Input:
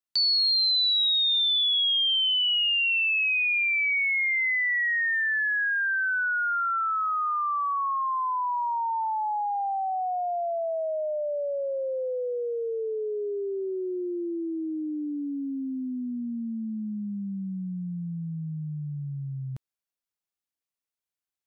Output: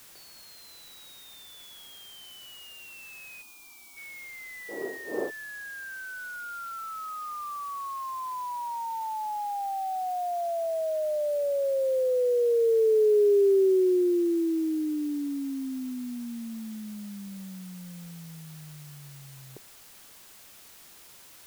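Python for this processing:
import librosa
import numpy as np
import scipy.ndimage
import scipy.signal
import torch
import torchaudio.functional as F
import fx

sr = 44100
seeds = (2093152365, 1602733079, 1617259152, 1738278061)

p1 = fx.dmg_wind(x, sr, seeds[0], corner_hz=540.0, level_db=-26.0, at=(4.68, 5.29), fade=0.02)
p2 = fx.over_compress(p1, sr, threshold_db=-33.0, ratio=-1.0)
p3 = p1 + F.gain(torch.from_numpy(p2), 1.0).numpy()
p4 = fx.ladder_bandpass(p3, sr, hz=450.0, resonance_pct=60)
p5 = fx.dmg_noise_colour(p4, sr, seeds[1], colour='white', level_db=-58.0)
p6 = fx.fixed_phaser(p5, sr, hz=510.0, stages=6, at=(3.41, 3.96), fade=0.02)
y = F.gain(torch.from_numpy(p6), 6.5).numpy()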